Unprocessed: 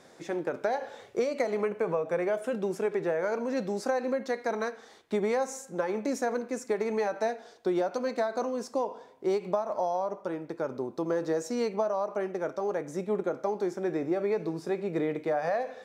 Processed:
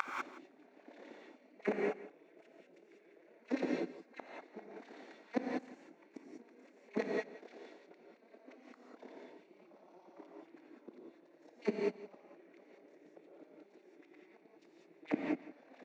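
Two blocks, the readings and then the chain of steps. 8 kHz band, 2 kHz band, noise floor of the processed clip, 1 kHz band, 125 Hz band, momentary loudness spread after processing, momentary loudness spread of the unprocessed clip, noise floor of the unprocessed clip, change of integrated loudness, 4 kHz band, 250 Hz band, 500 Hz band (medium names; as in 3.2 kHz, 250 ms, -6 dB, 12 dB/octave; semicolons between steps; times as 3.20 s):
under -20 dB, -10.0 dB, -66 dBFS, -16.0 dB, -15.0 dB, 22 LU, 5 LU, -54 dBFS, -10.0 dB, -12.0 dB, -10.0 dB, -16.0 dB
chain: spectral levelling over time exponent 0.4; steep high-pass 150 Hz 72 dB/octave; high-order bell 780 Hz -11.5 dB 2.4 oct; transient shaper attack -4 dB, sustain +2 dB; compressor with a negative ratio -38 dBFS, ratio -0.5; wow and flutter 38 cents; inverted gate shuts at -37 dBFS, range -37 dB; AM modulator 35 Hz, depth 50%; LFO high-pass sine 8.7 Hz 280–3100 Hz; tape spacing loss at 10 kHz 30 dB; on a send: delay 167 ms -17 dB; on the sum: gated-style reverb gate 220 ms rising, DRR -2 dB; trim +18 dB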